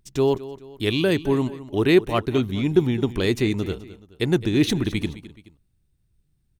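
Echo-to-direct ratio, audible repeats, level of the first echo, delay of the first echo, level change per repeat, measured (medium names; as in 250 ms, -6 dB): -15.5 dB, 2, -16.0 dB, 213 ms, -7.5 dB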